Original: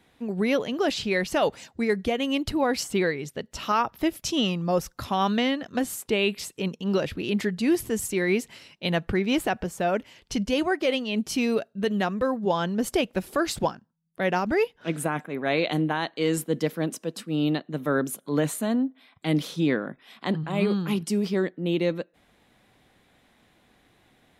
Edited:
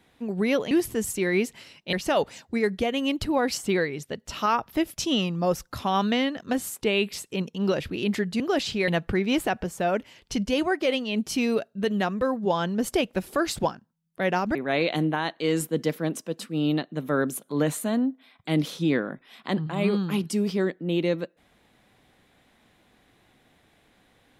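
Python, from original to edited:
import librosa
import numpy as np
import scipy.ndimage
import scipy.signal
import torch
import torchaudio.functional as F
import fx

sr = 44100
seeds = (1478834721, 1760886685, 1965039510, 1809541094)

y = fx.edit(x, sr, fx.swap(start_s=0.71, length_s=0.48, other_s=7.66, other_length_s=1.22),
    fx.cut(start_s=14.55, length_s=0.77), tone=tone)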